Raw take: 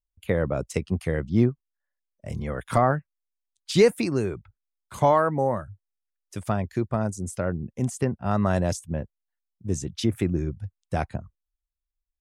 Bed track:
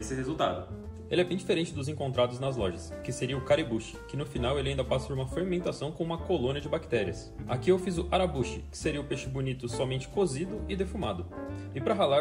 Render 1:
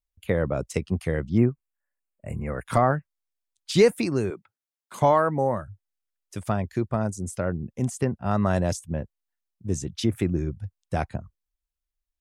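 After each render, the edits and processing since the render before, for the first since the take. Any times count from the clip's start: 1.38–2.66 s: brick-wall FIR band-stop 2.9–6.8 kHz; 4.30–5.02 s: high-pass 210 Hz 24 dB/octave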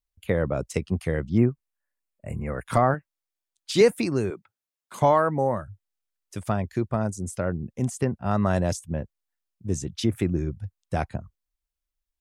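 2.94–3.81 s: resonant low shelf 210 Hz -6 dB, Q 1.5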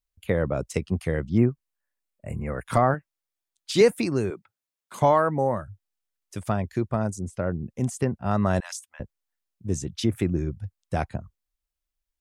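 7.19–7.62 s: low-pass 2.2 kHz 6 dB/octave; 8.60–9.00 s: inverse Chebyshev high-pass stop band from 420 Hz, stop band 50 dB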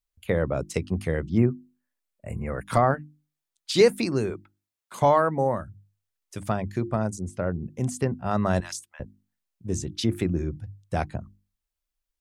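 hum notches 50/100/150/200/250/300/350 Hz; dynamic bell 4.3 kHz, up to +4 dB, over -51 dBFS, Q 3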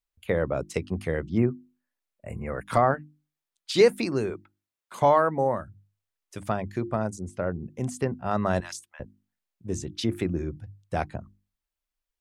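tone controls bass -4 dB, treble -4 dB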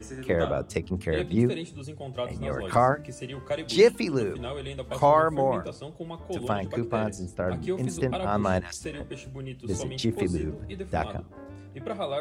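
add bed track -5.5 dB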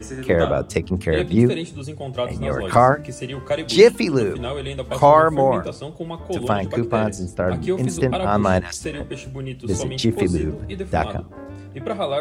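trim +7.5 dB; peak limiter -1 dBFS, peak gain reduction 1 dB

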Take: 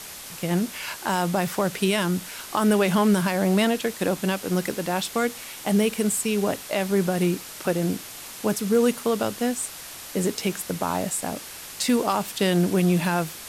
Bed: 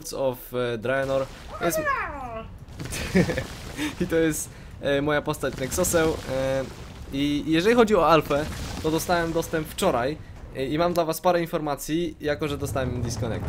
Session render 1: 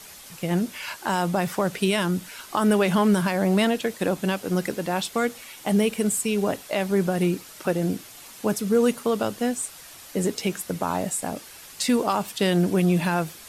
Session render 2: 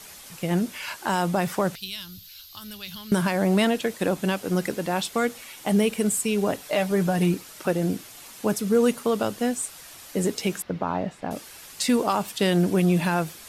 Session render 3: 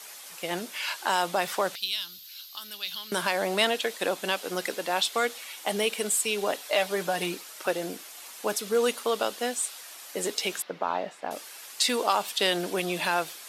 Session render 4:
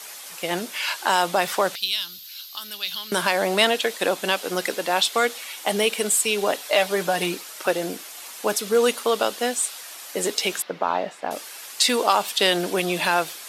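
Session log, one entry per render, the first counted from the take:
noise reduction 7 dB, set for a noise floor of -40 dBFS
1.75–3.12 s: FFT filter 100 Hz 0 dB, 160 Hz -18 dB, 410 Hz -30 dB, 660 Hz -29 dB, 1.3 kHz -20 dB, 2 kHz -17 dB, 4.2 kHz +3 dB, 9.2 kHz -16 dB, 13 kHz +4 dB; 6.62–7.34 s: comb 6.7 ms, depth 55%; 10.62–11.31 s: distance through air 270 m
high-pass 490 Hz 12 dB/octave; dynamic bell 3.7 kHz, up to +6 dB, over -47 dBFS, Q 1.5
trim +5.5 dB

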